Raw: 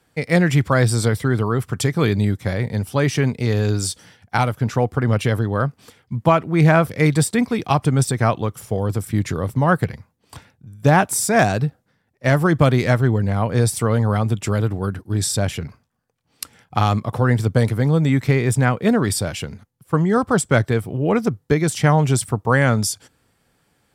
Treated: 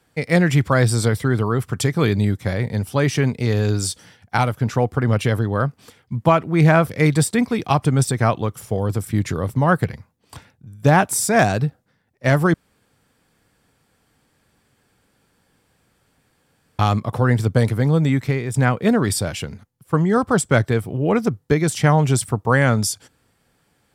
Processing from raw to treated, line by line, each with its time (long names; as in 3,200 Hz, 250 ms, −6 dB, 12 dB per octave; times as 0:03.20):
0:12.54–0:16.79: fill with room tone
0:18.03–0:18.54: fade out, to −9 dB